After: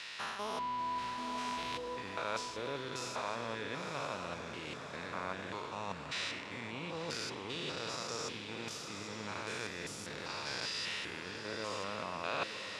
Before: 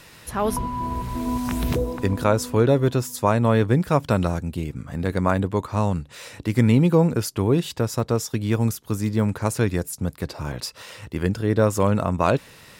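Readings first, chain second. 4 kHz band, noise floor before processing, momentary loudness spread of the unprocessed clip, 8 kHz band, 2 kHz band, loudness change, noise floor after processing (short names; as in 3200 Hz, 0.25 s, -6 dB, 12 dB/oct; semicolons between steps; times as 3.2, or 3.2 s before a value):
-3.0 dB, -48 dBFS, 12 LU, -12.0 dB, -7.0 dB, -16.5 dB, -45 dBFS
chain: stepped spectrum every 0.2 s; reverse; compressor 5:1, threshold -30 dBFS, peak gain reduction 13.5 dB; reverse; band-pass 3600 Hz, Q 0.86; air absorption 76 m; diffused feedback echo 0.96 s, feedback 56%, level -8 dB; gain +9 dB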